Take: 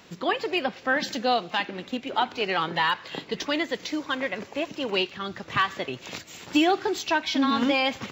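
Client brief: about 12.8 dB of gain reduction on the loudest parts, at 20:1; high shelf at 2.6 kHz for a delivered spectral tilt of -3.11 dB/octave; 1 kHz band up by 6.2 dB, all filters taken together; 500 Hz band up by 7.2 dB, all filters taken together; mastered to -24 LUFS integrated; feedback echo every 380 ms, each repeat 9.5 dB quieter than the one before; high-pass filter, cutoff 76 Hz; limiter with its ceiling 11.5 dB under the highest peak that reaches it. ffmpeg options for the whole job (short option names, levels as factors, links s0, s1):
-af "highpass=76,equalizer=f=500:t=o:g=7.5,equalizer=f=1000:t=o:g=4.5,highshelf=f=2600:g=5.5,acompressor=threshold=0.0562:ratio=20,alimiter=limit=0.0631:level=0:latency=1,aecho=1:1:380|760|1140|1520:0.335|0.111|0.0365|0.012,volume=2.99"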